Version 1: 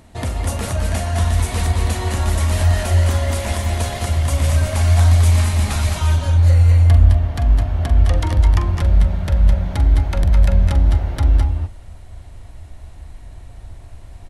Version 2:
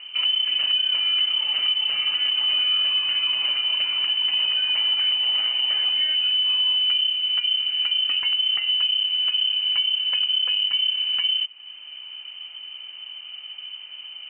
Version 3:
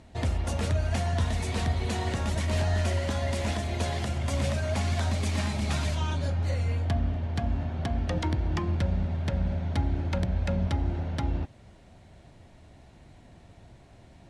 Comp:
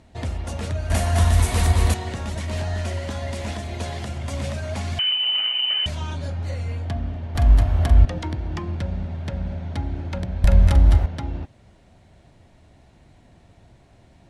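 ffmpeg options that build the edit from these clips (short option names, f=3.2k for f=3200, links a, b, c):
-filter_complex "[0:a]asplit=3[a][b][c];[2:a]asplit=5[d][e][f][g][h];[d]atrim=end=0.902[i];[a]atrim=start=0.898:end=1.942[j];[e]atrim=start=1.938:end=4.992[k];[1:a]atrim=start=4.988:end=5.862[l];[f]atrim=start=5.858:end=7.352[m];[b]atrim=start=7.348:end=8.052[n];[g]atrim=start=8.048:end=10.442[o];[c]atrim=start=10.438:end=11.062[p];[h]atrim=start=11.058[q];[i][j]acrossfade=d=0.004:c1=hsin:c2=hsin[r];[r][k]acrossfade=d=0.004:c1=hsin:c2=hsin[s];[s][l]acrossfade=d=0.004:c1=hsin:c2=hsin[t];[t][m]acrossfade=d=0.004:c1=hsin:c2=hsin[u];[u][n]acrossfade=d=0.004:c1=hsin:c2=hsin[v];[v][o]acrossfade=d=0.004:c1=hsin:c2=hsin[w];[w][p]acrossfade=d=0.004:c1=hsin:c2=hsin[x];[x][q]acrossfade=d=0.004:c1=hsin:c2=hsin"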